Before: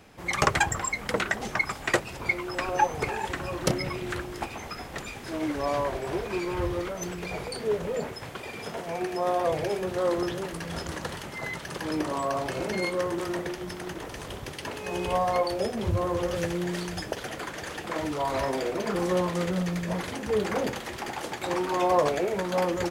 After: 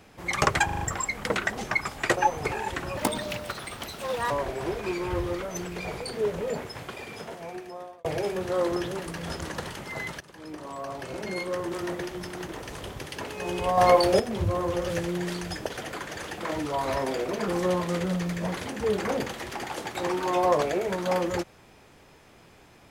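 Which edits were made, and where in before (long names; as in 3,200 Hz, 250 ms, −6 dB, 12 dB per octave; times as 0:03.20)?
0:00.65: stutter 0.04 s, 5 plays
0:02.01–0:02.74: remove
0:03.54–0:05.77: play speed 167%
0:08.35–0:09.51: fade out
0:11.67–0:13.53: fade in, from −17.5 dB
0:15.24–0:15.66: clip gain +7.5 dB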